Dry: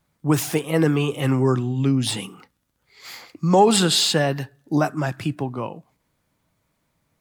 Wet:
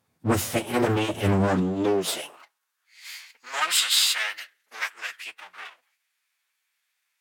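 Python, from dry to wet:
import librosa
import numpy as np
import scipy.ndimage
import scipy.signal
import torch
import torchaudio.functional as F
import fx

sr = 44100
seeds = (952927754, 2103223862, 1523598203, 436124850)

y = fx.lower_of_two(x, sr, delay_ms=8.9)
y = fx.pitch_keep_formants(y, sr, semitones=-5.0)
y = fx.filter_sweep_highpass(y, sr, from_hz=120.0, to_hz=2000.0, start_s=1.31, end_s=2.96, q=1.5)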